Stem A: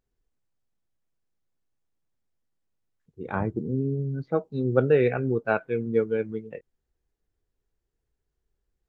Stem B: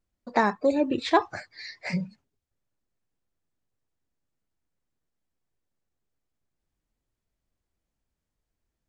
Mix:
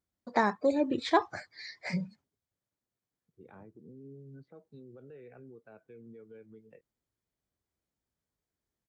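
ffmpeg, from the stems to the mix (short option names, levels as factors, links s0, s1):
-filter_complex "[0:a]acrossover=split=200|640|2300[s0][s1][s2][s3];[s0]acompressor=threshold=0.0141:ratio=4[s4];[s1]acompressor=threshold=0.0708:ratio=4[s5];[s2]acompressor=threshold=0.0158:ratio=4[s6];[s3]acompressor=threshold=0.00355:ratio=4[s7];[s4][s5][s6][s7]amix=inputs=4:normalize=0,alimiter=level_in=1.78:limit=0.0631:level=0:latency=1:release=180,volume=0.562,adelay=200,volume=0.2[s8];[1:a]bandreject=f=2700:w=7.9,volume=0.631[s9];[s8][s9]amix=inputs=2:normalize=0,highpass=74"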